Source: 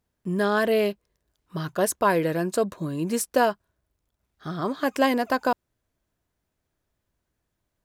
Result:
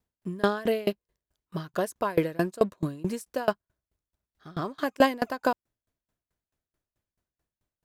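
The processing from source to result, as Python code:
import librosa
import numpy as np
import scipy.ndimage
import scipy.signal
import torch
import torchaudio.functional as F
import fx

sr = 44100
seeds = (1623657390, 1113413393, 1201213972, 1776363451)

p1 = np.sign(x) * np.maximum(np.abs(x) - 10.0 ** (-43.0 / 20.0), 0.0)
p2 = x + F.gain(torch.from_numpy(p1), -3.0).numpy()
y = fx.tremolo_decay(p2, sr, direction='decaying', hz=4.6, depth_db=26)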